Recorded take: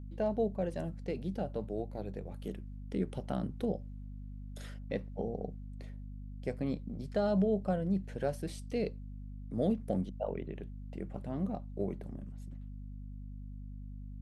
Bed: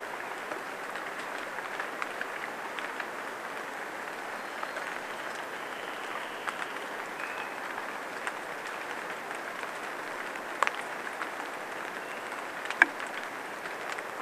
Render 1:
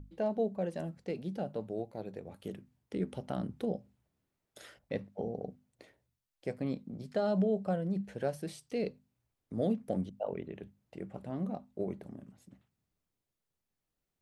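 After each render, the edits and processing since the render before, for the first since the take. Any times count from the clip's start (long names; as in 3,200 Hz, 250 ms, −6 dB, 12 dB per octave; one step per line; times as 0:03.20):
mains-hum notches 50/100/150/200/250 Hz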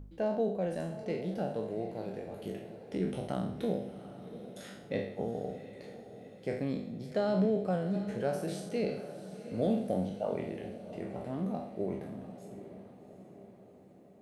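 peak hold with a decay on every bin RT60 0.65 s
feedback delay with all-pass diffusion 753 ms, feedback 57%, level −12.5 dB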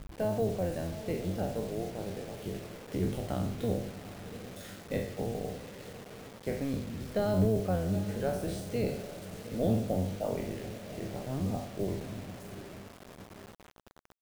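sub-octave generator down 1 octave, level −1 dB
bit reduction 8 bits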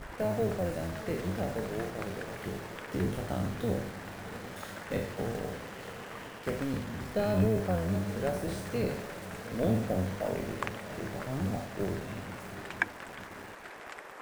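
mix in bed −9 dB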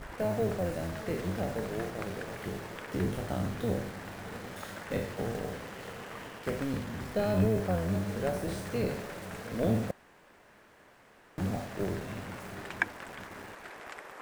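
0:09.91–0:11.38: fill with room tone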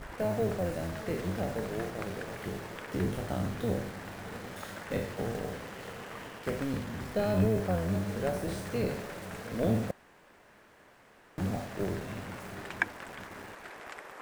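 no processing that can be heard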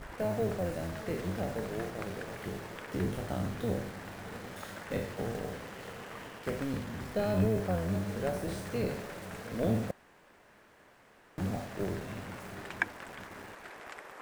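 level −1.5 dB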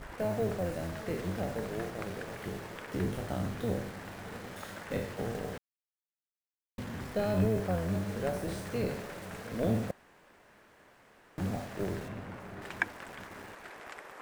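0:05.58–0:06.78: silence
0:12.08–0:12.62: high-shelf EQ 3,000 Hz −11 dB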